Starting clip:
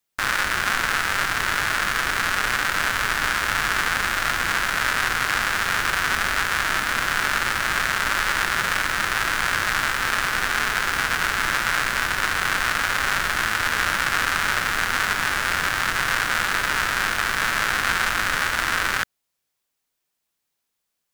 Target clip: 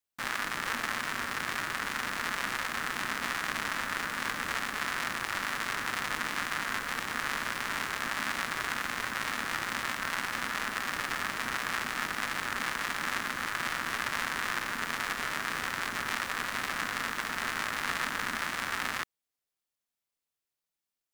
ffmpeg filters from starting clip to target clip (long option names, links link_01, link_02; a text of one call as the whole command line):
ffmpeg -i in.wav -af "aeval=exprs='val(0)*sin(2*PI*240*n/s)':channel_layout=same,volume=-8dB" out.wav